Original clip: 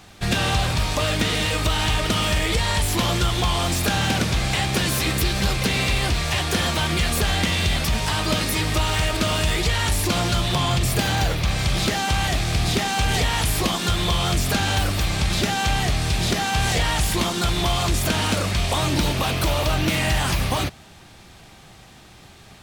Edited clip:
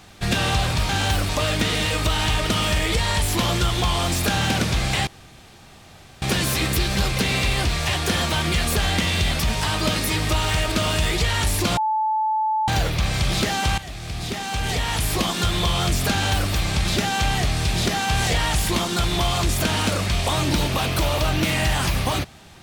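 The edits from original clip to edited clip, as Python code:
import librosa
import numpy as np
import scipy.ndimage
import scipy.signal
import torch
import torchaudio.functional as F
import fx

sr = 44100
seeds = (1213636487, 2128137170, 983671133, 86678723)

y = fx.edit(x, sr, fx.insert_room_tone(at_s=4.67, length_s=1.15),
    fx.bleep(start_s=10.22, length_s=0.91, hz=870.0, db=-18.5),
    fx.fade_in_from(start_s=12.23, length_s=1.5, floor_db=-15.0),
    fx.duplicate(start_s=14.56, length_s=0.4, to_s=0.89), tone=tone)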